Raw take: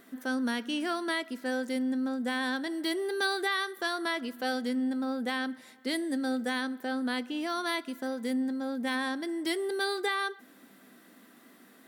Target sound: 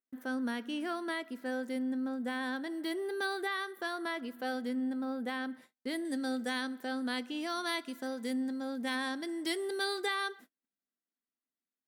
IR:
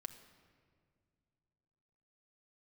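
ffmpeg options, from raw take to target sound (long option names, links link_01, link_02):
-af "agate=range=-41dB:threshold=-48dB:ratio=16:detection=peak,asetnsamples=nb_out_samples=441:pad=0,asendcmd='6.05 equalizer g 3.5',equalizer=frequency=6000:width=0.54:gain=-6,volume=-4dB"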